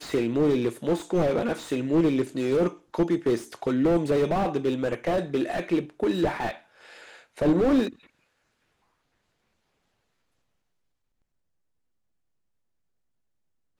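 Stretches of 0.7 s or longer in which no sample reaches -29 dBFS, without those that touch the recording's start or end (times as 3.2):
6.51–7.39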